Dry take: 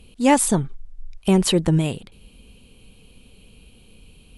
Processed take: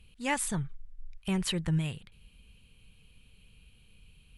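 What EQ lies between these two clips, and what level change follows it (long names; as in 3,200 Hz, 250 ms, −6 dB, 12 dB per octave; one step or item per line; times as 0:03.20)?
drawn EQ curve 150 Hz 0 dB, 260 Hz −11 dB, 690 Hz −9 dB, 1,800 Hz +3 dB, 5,100 Hz −4 dB
−8.0 dB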